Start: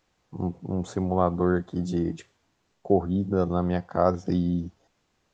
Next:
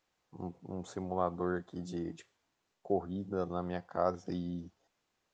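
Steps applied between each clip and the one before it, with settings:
low-shelf EQ 260 Hz −9 dB
level −7.5 dB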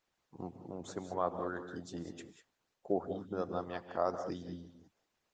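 on a send at −5.5 dB: convolution reverb, pre-delay 3 ms
on the sum: harmonic and percussive parts rebalanced harmonic −14 dB
level +2 dB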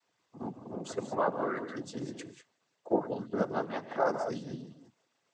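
cochlear-implant simulation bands 16
level +5.5 dB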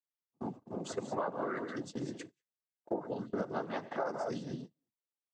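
noise gate −43 dBFS, range −32 dB
downward compressor 10 to 1, threshold −31 dBFS, peak gain reduction 10.5 dB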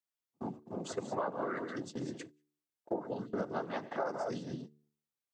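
hum removal 74.15 Hz, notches 6

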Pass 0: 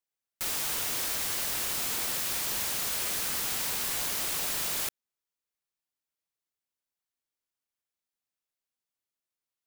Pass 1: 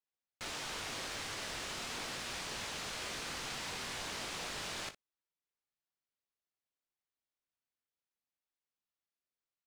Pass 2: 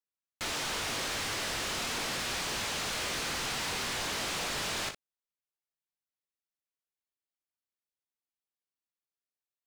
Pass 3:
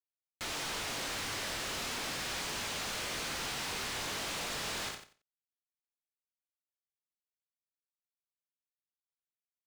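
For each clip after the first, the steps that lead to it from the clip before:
high-frequency loss of the air 97 metres; on a send: ambience of single reflections 21 ms −9.5 dB, 59 ms −14.5 dB; on the sum: level −4 dB
leveller curve on the samples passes 3
brickwall limiter −37 dBFS, peak gain reduction 8 dB; bit reduction 9 bits; repeating echo 90 ms, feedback 19%, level −9 dB; level +3 dB

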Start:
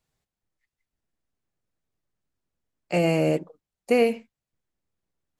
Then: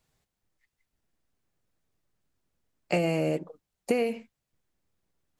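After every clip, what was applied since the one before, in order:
downward compressor 10 to 1, threshold −27 dBFS, peak gain reduction 12.5 dB
level +4.5 dB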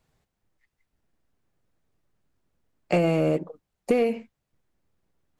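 high-shelf EQ 2,700 Hz −8 dB
in parallel at −11 dB: wave folding −21.5 dBFS
on the sum: level +3 dB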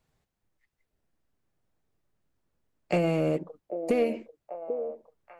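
echo through a band-pass that steps 791 ms, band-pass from 460 Hz, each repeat 0.7 octaves, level −6 dB
level −3.5 dB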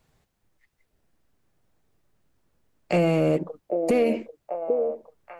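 brickwall limiter −21 dBFS, peak gain reduction 6.5 dB
level +8 dB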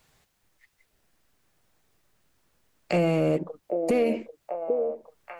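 one half of a high-frequency compander encoder only
level −2 dB

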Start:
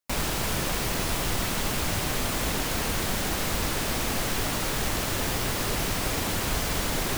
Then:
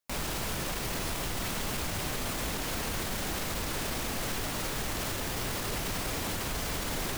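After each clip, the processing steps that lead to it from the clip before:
brickwall limiter −24 dBFS, peak gain reduction 10 dB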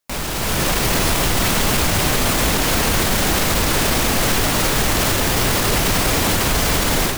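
automatic gain control gain up to 7.5 dB
level +8.5 dB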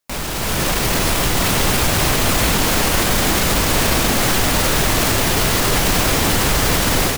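single-tap delay 977 ms −5 dB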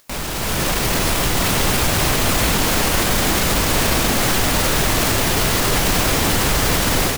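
upward compression, threshold −36 dBFS
level −1 dB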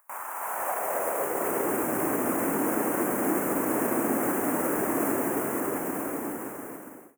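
fade-out on the ending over 2.05 s
Butterworth band-reject 4,100 Hz, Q 0.52
high-pass filter sweep 960 Hz → 290 Hz, 0:00.33–0:01.88
level −8.5 dB

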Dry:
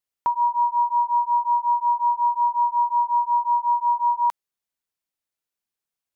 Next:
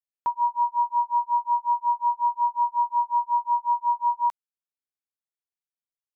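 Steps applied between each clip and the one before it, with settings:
expander for the loud parts 2.5 to 1, over −28 dBFS
level −1.5 dB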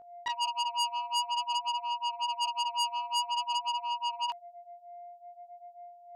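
steady tone 700 Hz −43 dBFS
chorus effect 0.5 Hz, delay 18 ms, depth 7.7 ms
saturating transformer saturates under 3,900 Hz

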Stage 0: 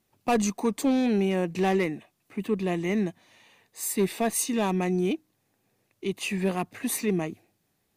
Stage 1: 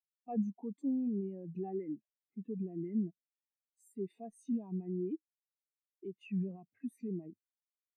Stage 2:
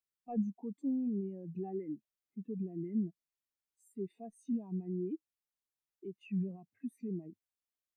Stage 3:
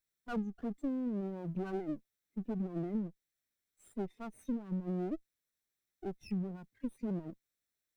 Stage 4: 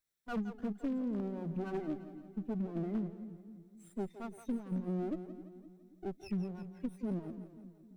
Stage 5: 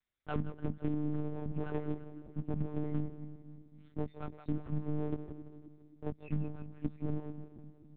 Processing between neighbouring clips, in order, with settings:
brickwall limiter −27 dBFS, peak gain reduction 11.5 dB; every bin expanded away from the loudest bin 2.5 to 1; level +2.5 dB
low-shelf EQ 110 Hz +7.5 dB; level −1.5 dB
lower of the sound and its delayed copy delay 0.52 ms; downward compressor 6 to 1, threshold −39 dBFS, peak gain reduction 10.5 dB; level +6 dB
echo with a time of its own for lows and highs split 330 Hz, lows 266 ms, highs 169 ms, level −11 dB; wave folding −29 dBFS
one-pitch LPC vocoder at 8 kHz 150 Hz; level +2 dB

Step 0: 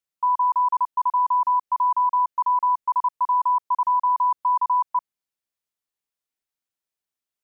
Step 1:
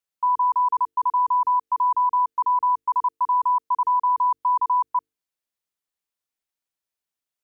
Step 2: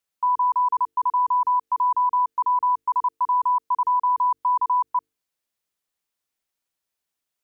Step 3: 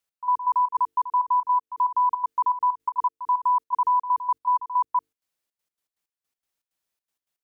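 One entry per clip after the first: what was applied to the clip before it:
mains-hum notches 50/100/150/200/250/300/350/400/450 Hz
brickwall limiter −21 dBFS, peak gain reduction 5 dB; level +4.5 dB
gate pattern "x..x.xx.xxx.x.x." 161 BPM −12 dB

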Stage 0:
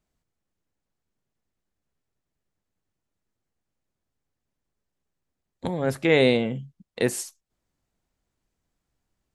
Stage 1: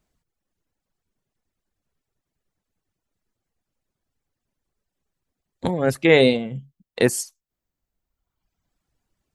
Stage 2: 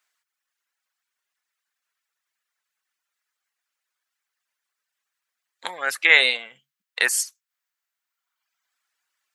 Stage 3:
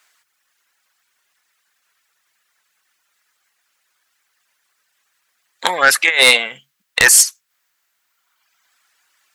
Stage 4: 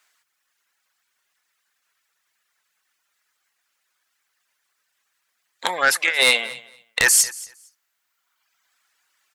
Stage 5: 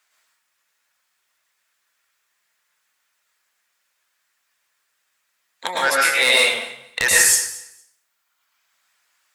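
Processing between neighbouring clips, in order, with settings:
reverb reduction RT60 1.4 s; level +5.5 dB
high-pass with resonance 1,500 Hz, resonance Q 1.5; level +4 dB
compressor whose output falls as the input rises −20 dBFS, ratio −0.5; sine wavefolder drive 8 dB, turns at −4.5 dBFS; level +1.5 dB
repeating echo 229 ms, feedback 16%, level −20 dB; level −6 dB
dense smooth reverb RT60 0.66 s, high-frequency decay 0.8×, pre-delay 95 ms, DRR −4 dB; level −3 dB

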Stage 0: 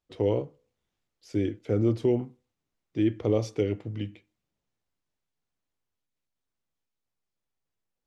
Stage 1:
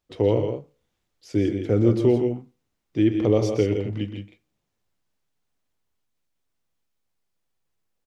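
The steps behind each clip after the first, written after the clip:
loudspeakers that aren't time-aligned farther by 43 metres −11 dB, 57 metres −8 dB
level +5 dB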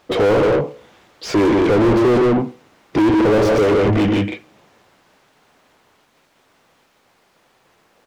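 mid-hump overdrive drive 43 dB, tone 1,100 Hz, clips at −7 dBFS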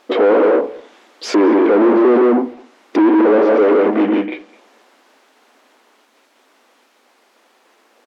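treble cut that deepens with the level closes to 1,800 Hz, closed at −16 dBFS
linear-phase brick-wall high-pass 210 Hz
far-end echo of a speakerphone 210 ms, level −20 dB
level +3 dB

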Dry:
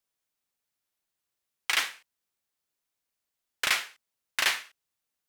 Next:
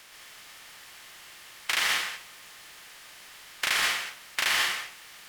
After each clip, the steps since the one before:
compressor on every frequency bin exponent 0.4
convolution reverb RT60 0.40 s, pre-delay 115 ms, DRR −1 dB
level −4.5 dB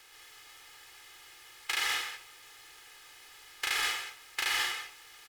comb filter 2.4 ms, depth 88%
level −7.5 dB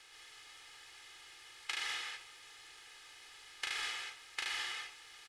downward compressor 6 to 1, threshold −34 dBFS, peak gain reduction 7.5 dB
drawn EQ curve 1,000 Hz 0 dB, 3,600 Hz +3 dB, 10,000 Hz −1 dB, 15,000 Hz −19 dB
level −3.5 dB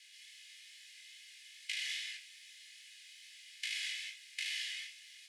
chorus effect 2.4 Hz, delay 18 ms, depth 4.4 ms
Butterworth high-pass 1,900 Hz 48 dB per octave
level +4 dB

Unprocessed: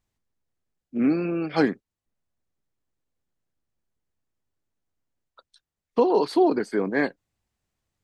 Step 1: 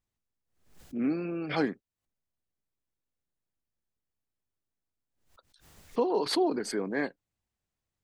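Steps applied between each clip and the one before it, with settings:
background raised ahead of every attack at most 100 dB per second
level −7.5 dB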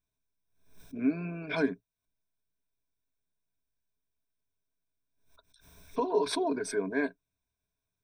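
EQ curve with evenly spaced ripples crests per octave 1.6, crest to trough 15 dB
level −3.5 dB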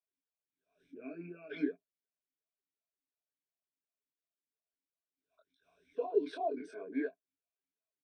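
double-tracking delay 23 ms −3 dB
formant filter swept between two vowels a-i 2.8 Hz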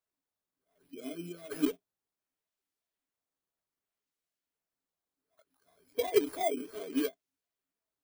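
samples in bit-reversed order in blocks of 16 samples
in parallel at −3.5 dB: sample-and-hold swept by an LFO 9×, swing 160% 0.65 Hz

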